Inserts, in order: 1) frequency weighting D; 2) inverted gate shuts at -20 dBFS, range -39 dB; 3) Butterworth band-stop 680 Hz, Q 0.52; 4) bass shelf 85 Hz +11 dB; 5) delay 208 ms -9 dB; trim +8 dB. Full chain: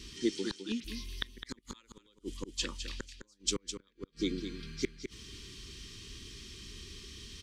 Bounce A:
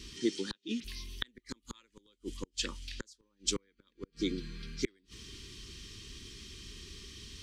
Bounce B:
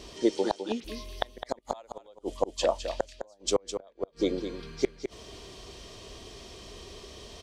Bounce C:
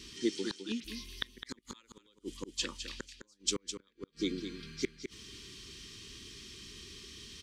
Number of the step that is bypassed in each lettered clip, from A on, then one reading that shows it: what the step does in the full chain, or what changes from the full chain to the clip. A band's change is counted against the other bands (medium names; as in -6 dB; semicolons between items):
5, momentary loudness spread change +1 LU; 3, 1 kHz band +17.5 dB; 4, 125 Hz band -4.0 dB